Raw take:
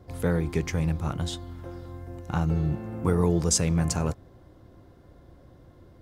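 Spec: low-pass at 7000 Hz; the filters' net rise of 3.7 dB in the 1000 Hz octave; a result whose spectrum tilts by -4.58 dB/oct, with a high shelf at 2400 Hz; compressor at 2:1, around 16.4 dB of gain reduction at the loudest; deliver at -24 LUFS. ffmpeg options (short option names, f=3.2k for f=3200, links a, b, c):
-af "lowpass=7k,equalizer=f=1k:t=o:g=3,highshelf=f=2.4k:g=9,acompressor=threshold=-46dB:ratio=2,volume=15.5dB"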